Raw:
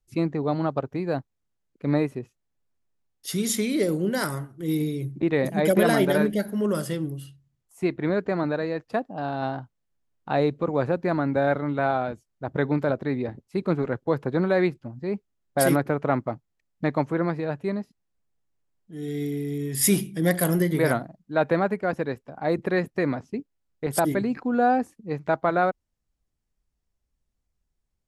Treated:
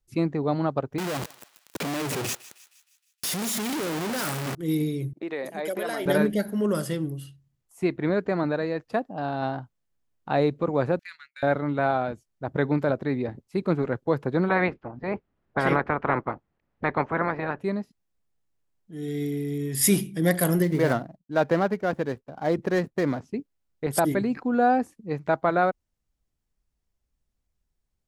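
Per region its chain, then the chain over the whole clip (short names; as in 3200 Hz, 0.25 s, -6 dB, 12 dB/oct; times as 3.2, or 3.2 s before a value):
0.98–4.55 infinite clipping + HPF 140 Hz + thinning echo 0.156 s, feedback 54%, high-pass 1200 Hz, level -17 dB
5.13–6.06 expander -33 dBFS + HPF 390 Hz + compressor 2:1, threshold -32 dBFS
10.99–11.43 inverse Chebyshev high-pass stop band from 770 Hz, stop band 50 dB + gate -50 dBFS, range -45 dB + upward compressor, threshold -42 dBFS
14.48–17.59 spectral limiter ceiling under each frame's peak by 20 dB + LPF 1800 Hz
20.63–23.2 median filter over 15 samples + expander -53 dBFS
whole clip: dry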